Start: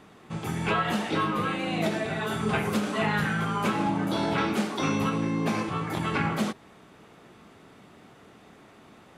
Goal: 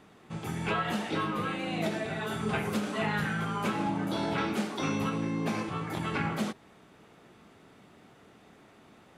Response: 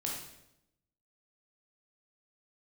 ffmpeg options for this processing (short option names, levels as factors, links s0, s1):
-af "equalizer=f=1100:w=6.2:g=-2,volume=0.631"